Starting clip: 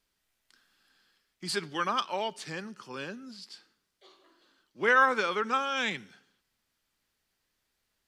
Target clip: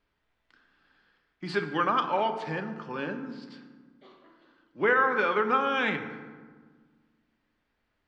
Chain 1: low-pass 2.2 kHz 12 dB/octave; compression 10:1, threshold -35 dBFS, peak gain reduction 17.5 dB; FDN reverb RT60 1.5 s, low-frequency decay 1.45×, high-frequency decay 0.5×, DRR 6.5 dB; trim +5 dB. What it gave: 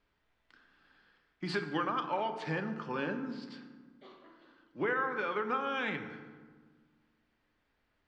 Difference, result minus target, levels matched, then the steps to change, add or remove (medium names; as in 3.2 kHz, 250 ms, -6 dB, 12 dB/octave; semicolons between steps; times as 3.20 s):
compression: peak gain reduction +9.5 dB
change: compression 10:1, threshold -24.5 dBFS, peak gain reduction 8 dB